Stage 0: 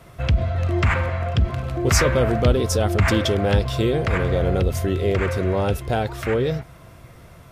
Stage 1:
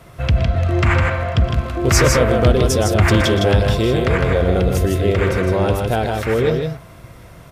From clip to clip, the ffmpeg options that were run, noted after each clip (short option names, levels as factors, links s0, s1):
-af "aecho=1:1:119.5|157.4:0.251|0.631,volume=1.41"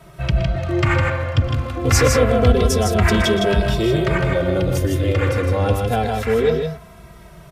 -filter_complex "[0:a]asplit=2[s0][s1];[s1]adelay=2.7,afreqshift=-0.27[s2];[s0][s2]amix=inputs=2:normalize=1,volume=1.19"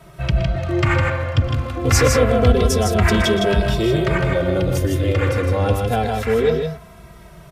-af anull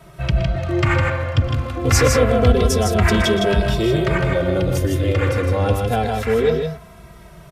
-af "aresample=32000,aresample=44100"